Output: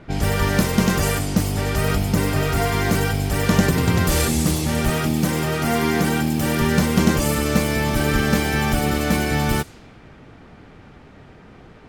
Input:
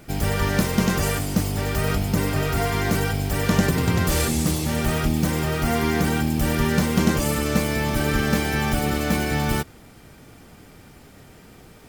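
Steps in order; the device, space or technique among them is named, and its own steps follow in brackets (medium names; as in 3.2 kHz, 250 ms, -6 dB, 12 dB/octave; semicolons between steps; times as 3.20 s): cassette deck with a dynamic noise filter (white noise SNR 27 dB; level-controlled noise filter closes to 1.8 kHz, open at -19 dBFS); 4.90–6.62 s: high-pass 110 Hz 12 dB/octave; trim +2.5 dB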